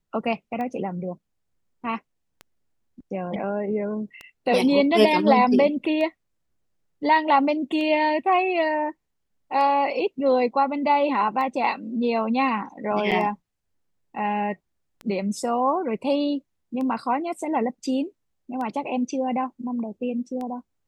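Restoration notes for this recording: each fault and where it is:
tick 33 1/3 rpm -22 dBFS
13.11–13.12 gap 6.8 ms

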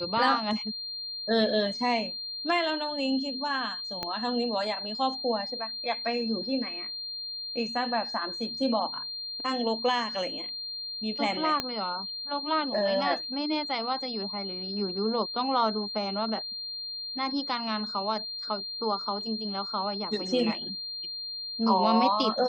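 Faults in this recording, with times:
tone 4200 Hz -34 dBFS
4.03 pop -17 dBFS
11.6 pop -13 dBFS

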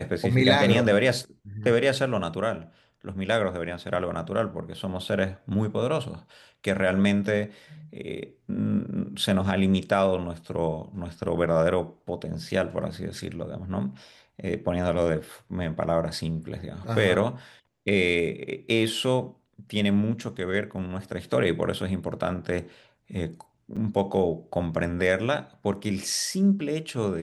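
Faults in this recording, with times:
23.76–23.77 gap 6.5 ms

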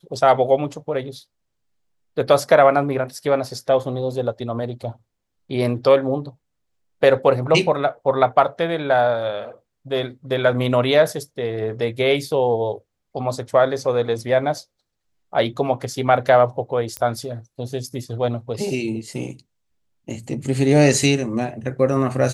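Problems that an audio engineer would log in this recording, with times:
16.97 pop -10 dBFS

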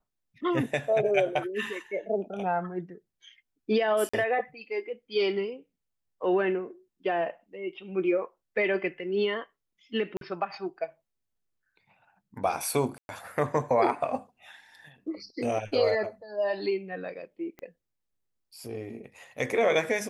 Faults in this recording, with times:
4.09–4.13 gap 45 ms
10.17–10.21 gap 42 ms
12.98–13.09 gap 0.111 s
17.59 pop -29 dBFS

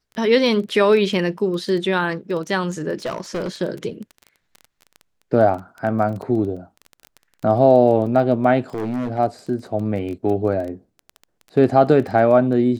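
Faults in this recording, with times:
crackle 16/s -27 dBFS
3.05–3.49 clipped -21 dBFS
8.74–9.19 clipped -20.5 dBFS

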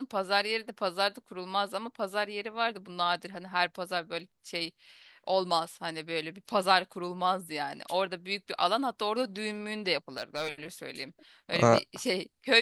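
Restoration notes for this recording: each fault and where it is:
10.17–10.52 clipped -27 dBFS

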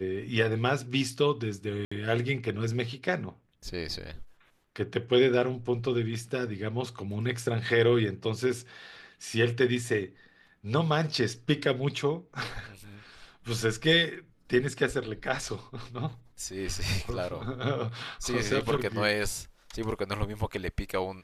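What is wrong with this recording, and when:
1.85–1.92 gap 65 ms

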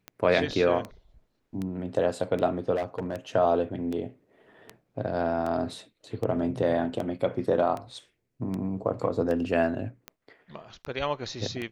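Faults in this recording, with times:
tick 78 rpm -21 dBFS
2.75–3.16 clipped -25 dBFS

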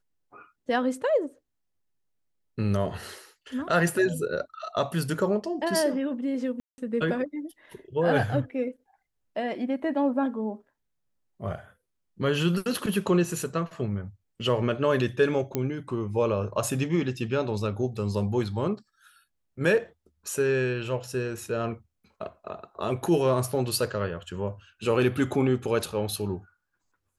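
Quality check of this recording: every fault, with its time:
6.6–6.78 gap 0.18 s
15.55 pop -13 dBFS

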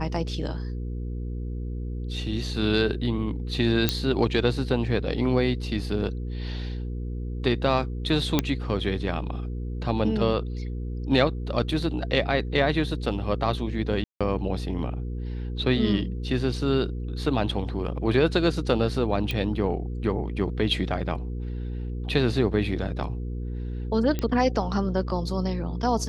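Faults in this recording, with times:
hum 60 Hz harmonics 8 -31 dBFS
3.89 pop -5 dBFS
8.39 pop -6 dBFS
14.04–14.21 gap 0.166 s
19.31 pop -14 dBFS
24.19 pop -14 dBFS

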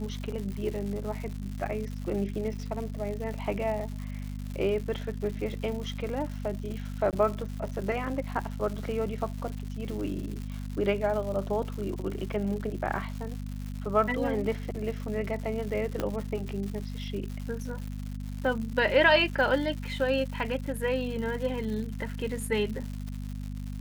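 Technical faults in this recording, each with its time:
crackle 220/s -36 dBFS
hum 50 Hz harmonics 5 -36 dBFS
7.11–7.13 gap 18 ms
16 pop -16 dBFS

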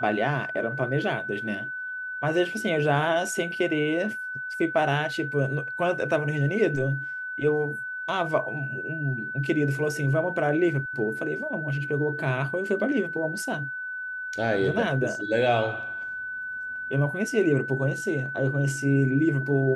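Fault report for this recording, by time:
tone 1500 Hz -31 dBFS

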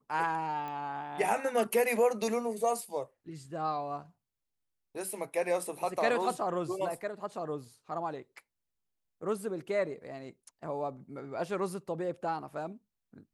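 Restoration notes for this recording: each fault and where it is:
0.68 pop -28 dBFS

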